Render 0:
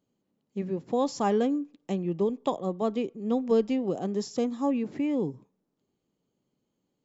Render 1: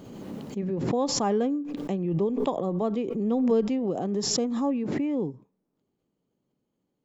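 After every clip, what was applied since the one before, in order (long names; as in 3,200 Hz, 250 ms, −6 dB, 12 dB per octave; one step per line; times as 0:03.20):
high-shelf EQ 2,700 Hz −8 dB
background raised ahead of every attack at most 31 dB per second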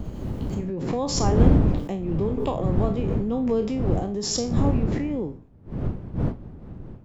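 peak hold with a decay on every bin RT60 0.33 s
wind on the microphone 180 Hz −24 dBFS
level −1 dB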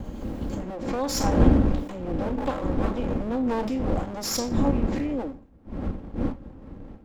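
lower of the sound and its delayed copy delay 3.7 ms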